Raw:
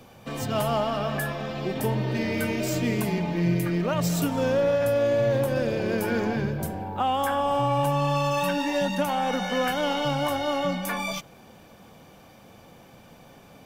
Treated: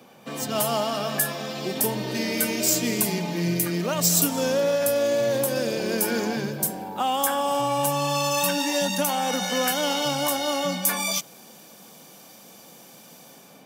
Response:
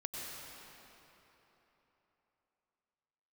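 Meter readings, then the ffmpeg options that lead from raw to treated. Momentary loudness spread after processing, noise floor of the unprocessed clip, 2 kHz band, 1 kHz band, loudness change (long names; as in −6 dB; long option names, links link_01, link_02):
6 LU, −51 dBFS, +1.0 dB, 0.0 dB, +2.0 dB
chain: -filter_complex "[0:a]highpass=frequency=160:width=0.5412,highpass=frequency=160:width=1.3066,acrossover=split=4700[link_01][link_02];[link_02]dynaudnorm=framelen=200:gausssize=5:maxgain=15dB[link_03];[link_01][link_03]amix=inputs=2:normalize=0"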